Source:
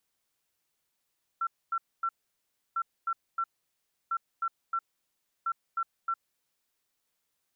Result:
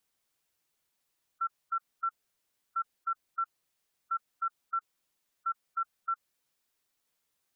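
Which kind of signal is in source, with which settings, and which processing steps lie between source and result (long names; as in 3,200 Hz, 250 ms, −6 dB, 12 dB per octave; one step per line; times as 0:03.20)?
beeps in groups sine 1,350 Hz, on 0.06 s, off 0.25 s, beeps 3, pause 0.67 s, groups 4, −26.5 dBFS
gate on every frequency bin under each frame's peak −15 dB strong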